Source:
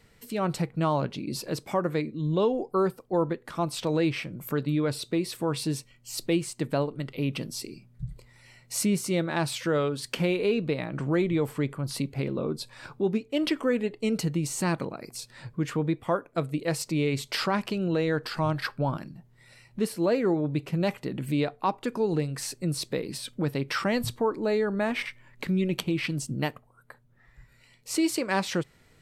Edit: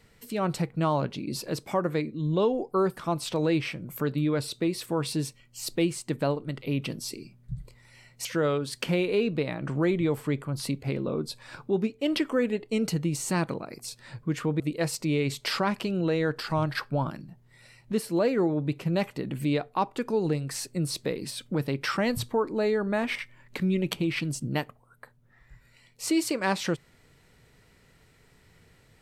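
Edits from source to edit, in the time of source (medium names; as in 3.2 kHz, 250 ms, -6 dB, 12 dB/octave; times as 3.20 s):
2.97–3.48 s: delete
8.76–9.56 s: delete
15.91–16.47 s: delete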